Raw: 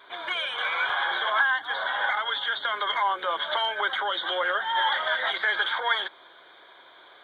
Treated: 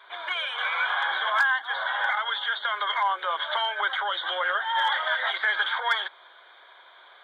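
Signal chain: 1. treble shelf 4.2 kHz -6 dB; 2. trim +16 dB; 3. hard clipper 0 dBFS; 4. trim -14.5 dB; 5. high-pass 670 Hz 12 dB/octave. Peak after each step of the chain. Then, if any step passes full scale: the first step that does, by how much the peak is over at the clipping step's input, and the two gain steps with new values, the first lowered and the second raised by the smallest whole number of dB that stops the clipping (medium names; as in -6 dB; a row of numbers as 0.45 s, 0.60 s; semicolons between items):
-12.0 dBFS, +4.0 dBFS, 0.0 dBFS, -14.5 dBFS, -12.0 dBFS; step 2, 4.0 dB; step 2 +12 dB, step 4 -10.5 dB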